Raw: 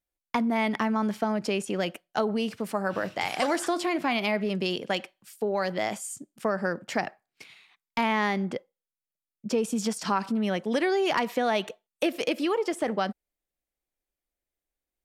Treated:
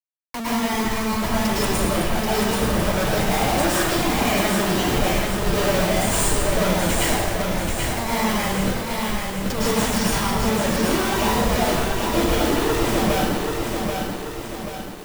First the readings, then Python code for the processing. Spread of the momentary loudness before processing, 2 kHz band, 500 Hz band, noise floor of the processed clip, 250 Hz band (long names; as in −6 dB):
7 LU, +7.0 dB, +6.0 dB, −31 dBFS, +7.0 dB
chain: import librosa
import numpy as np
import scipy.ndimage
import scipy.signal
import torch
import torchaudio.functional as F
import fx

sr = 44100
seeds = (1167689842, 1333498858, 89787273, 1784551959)

y = fx.cheby_harmonics(x, sr, harmonics=(2,), levels_db=(-10,), full_scale_db=-11.5)
y = fx.rider(y, sr, range_db=3, speed_s=2.0)
y = fx.echo_wet_highpass(y, sr, ms=696, feedback_pct=36, hz=1600.0, wet_db=-17)
y = fx.schmitt(y, sr, flips_db=-36.0)
y = fx.dereverb_blind(y, sr, rt60_s=1.7)
y = fx.high_shelf(y, sr, hz=11000.0, db=3.5)
y = fx.rev_plate(y, sr, seeds[0], rt60_s=1.3, hf_ratio=0.95, predelay_ms=95, drr_db=-8.5)
y = fx.echo_crushed(y, sr, ms=784, feedback_pct=55, bits=7, wet_db=-4)